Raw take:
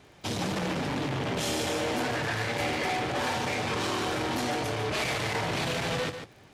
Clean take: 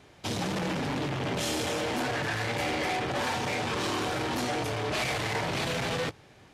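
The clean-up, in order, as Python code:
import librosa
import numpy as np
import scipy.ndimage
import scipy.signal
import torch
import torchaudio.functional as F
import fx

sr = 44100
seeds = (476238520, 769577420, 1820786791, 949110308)

y = fx.fix_declick_ar(x, sr, threshold=6.5)
y = fx.fix_echo_inverse(y, sr, delay_ms=147, level_db=-9.0)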